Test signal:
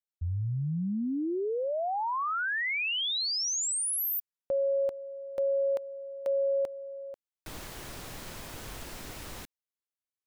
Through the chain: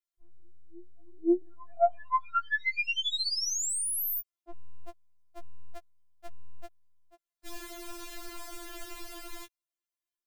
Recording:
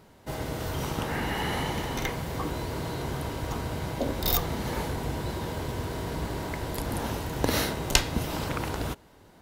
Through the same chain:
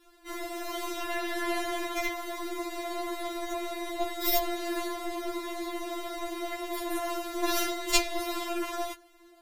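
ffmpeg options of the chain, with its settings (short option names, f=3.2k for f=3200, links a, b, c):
-af "adynamicequalizer=threshold=0.00631:dfrequency=700:dqfactor=2:tfrequency=700:tqfactor=2:attack=5:release=100:ratio=0.375:range=1.5:mode=boostabove:tftype=bell,asoftclip=type=tanh:threshold=-8dB,aeval=exprs='0.398*(cos(1*acos(clip(val(0)/0.398,-1,1)))-cos(1*PI/2))+0.0158*(cos(4*acos(clip(val(0)/0.398,-1,1)))-cos(4*PI/2))+0.01*(cos(7*acos(clip(val(0)/0.398,-1,1)))-cos(7*PI/2))+0.00631*(cos(8*acos(clip(val(0)/0.398,-1,1)))-cos(8*PI/2))':c=same,afftfilt=real='re*4*eq(mod(b,16),0)':imag='im*4*eq(mod(b,16),0)':win_size=2048:overlap=0.75,volume=3dB"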